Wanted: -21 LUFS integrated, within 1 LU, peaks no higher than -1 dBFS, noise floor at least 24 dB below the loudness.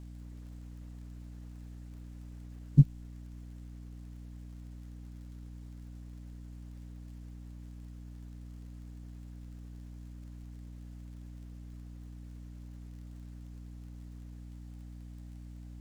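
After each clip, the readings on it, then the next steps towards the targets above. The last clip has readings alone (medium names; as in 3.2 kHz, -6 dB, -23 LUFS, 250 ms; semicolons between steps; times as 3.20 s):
tick rate 27 per s; hum 60 Hz; highest harmonic 300 Hz; hum level -44 dBFS; loudness -41.0 LUFS; peak level -8.5 dBFS; loudness target -21.0 LUFS
-> de-click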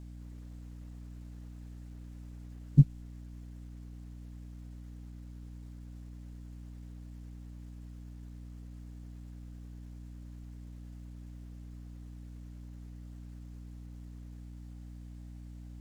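tick rate 0.38 per s; hum 60 Hz; highest harmonic 300 Hz; hum level -44 dBFS
-> de-hum 60 Hz, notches 5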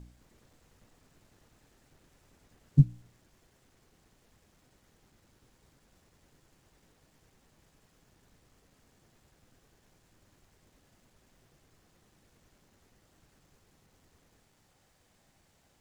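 hum not found; loudness -26.5 LUFS; peak level -9.0 dBFS; loudness target -21.0 LUFS
-> trim +5.5 dB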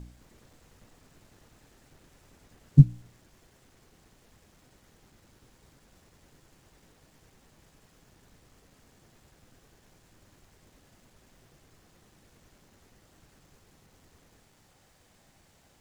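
loudness -21.0 LUFS; peak level -3.5 dBFS; noise floor -64 dBFS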